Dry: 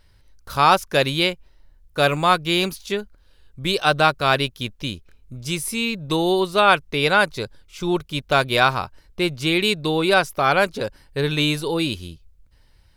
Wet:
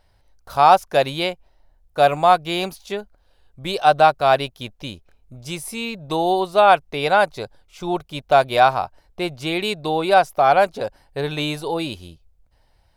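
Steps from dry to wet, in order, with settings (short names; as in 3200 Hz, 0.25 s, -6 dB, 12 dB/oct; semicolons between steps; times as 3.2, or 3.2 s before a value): bell 720 Hz +14 dB 0.75 oct; gain -5 dB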